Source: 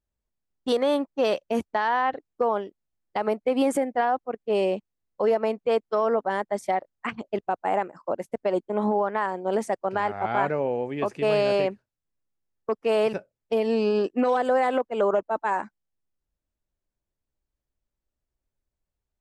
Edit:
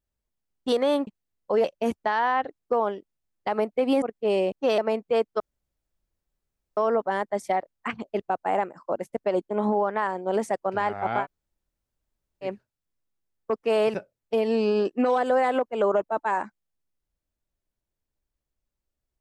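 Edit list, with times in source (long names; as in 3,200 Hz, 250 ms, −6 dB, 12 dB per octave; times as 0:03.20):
0:01.07–0:01.33: swap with 0:04.77–0:05.34
0:03.71–0:04.27: remove
0:05.96: splice in room tone 1.37 s
0:10.41–0:11.65: fill with room tone, crossfade 0.10 s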